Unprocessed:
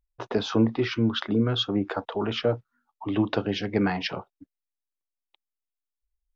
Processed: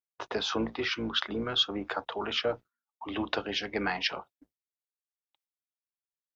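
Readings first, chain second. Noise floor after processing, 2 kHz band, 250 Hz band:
under -85 dBFS, +0.5 dB, -10.5 dB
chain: octave divider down 2 oct, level -3 dB; high-pass 1.1 kHz 6 dB/octave; gate with hold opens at -54 dBFS; trim +2 dB

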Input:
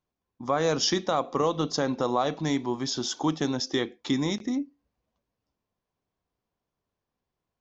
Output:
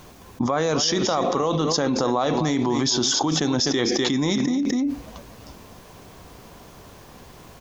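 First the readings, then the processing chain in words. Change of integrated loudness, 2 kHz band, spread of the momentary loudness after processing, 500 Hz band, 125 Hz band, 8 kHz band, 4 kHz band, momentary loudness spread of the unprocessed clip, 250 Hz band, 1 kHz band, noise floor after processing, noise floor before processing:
+5.5 dB, +5.5 dB, 5 LU, +4.5 dB, +6.5 dB, no reading, +7.0 dB, 5 LU, +6.5 dB, +4.0 dB, -46 dBFS, under -85 dBFS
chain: peaking EQ 6.5 kHz +2.5 dB 0.22 oct; on a send: delay 250 ms -14 dB; on the sum: level flattener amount 100%

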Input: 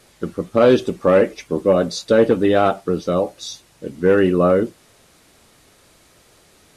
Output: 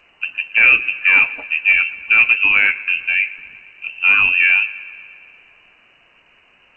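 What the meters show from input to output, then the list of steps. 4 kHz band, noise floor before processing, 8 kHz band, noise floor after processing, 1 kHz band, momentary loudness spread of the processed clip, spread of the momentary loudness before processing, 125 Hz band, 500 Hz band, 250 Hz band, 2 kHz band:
+4.5 dB, -54 dBFS, under -25 dB, -54 dBFS, -7.0 dB, 13 LU, 14 LU, under -20 dB, under -25 dB, under -20 dB, +19.0 dB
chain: feedback echo behind a low-pass 117 ms, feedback 70%, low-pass 2.2 kHz, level -19 dB; frequency inversion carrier 2.9 kHz; trim +1 dB; G.722 64 kbps 16 kHz

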